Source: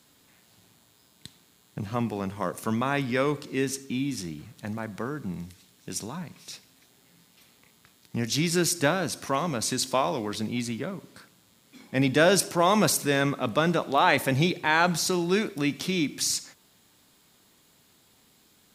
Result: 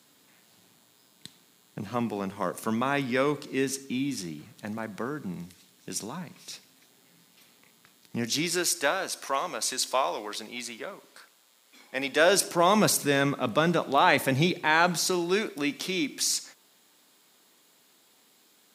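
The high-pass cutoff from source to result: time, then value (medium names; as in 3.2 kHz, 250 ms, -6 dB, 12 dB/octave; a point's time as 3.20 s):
8.23 s 160 Hz
8.68 s 520 Hz
12.12 s 520 Hz
12.73 s 120 Hz
14.43 s 120 Hz
15.37 s 280 Hz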